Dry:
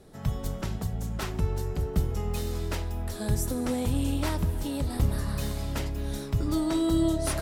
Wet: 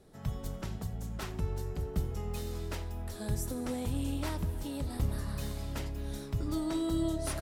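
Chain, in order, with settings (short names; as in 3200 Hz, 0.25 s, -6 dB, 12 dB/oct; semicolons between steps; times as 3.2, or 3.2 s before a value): echo 87 ms -21 dB; gain -6.5 dB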